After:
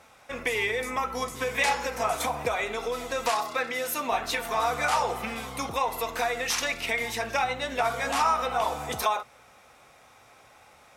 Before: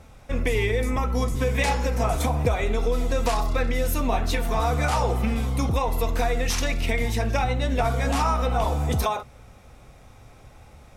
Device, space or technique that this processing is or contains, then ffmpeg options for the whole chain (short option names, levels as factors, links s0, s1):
filter by subtraction: -filter_complex "[0:a]asettb=1/sr,asplit=3[s0][s1][s2];[s0]atrim=end=3.304[s3];[s1]atrim=start=3.3:end=4.12,asetpts=PTS-STARTPTS,afade=t=in:d=0.004:c=qsin,afade=t=out:st=0.816:d=0.004:c=qsin,highpass=150[s4];[s2]atrim=start=4.116[s5];[s3][s4]acrossfade=d=0.004:c1=hsin:c2=qsin[s6];[s6][s5]acrossfade=d=0.004:c1=qsin:c2=hsin,asplit=2[s7][s8];[s8]lowpass=1200,volume=-1[s9];[s7][s9]amix=inputs=2:normalize=0"